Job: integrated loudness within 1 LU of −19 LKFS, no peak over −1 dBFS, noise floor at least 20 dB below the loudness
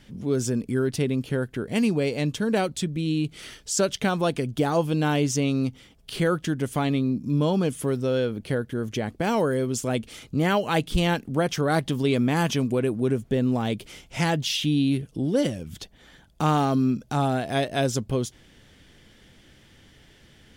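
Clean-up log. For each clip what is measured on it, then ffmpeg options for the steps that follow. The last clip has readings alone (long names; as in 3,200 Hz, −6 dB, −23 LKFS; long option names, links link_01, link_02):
integrated loudness −25.0 LKFS; sample peak −8.0 dBFS; target loudness −19.0 LKFS
→ -af "volume=6dB"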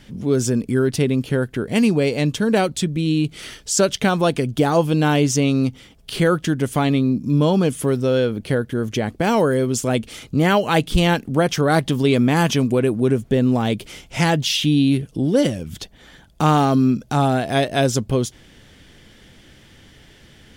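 integrated loudness −19.0 LKFS; sample peak −2.0 dBFS; background noise floor −49 dBFS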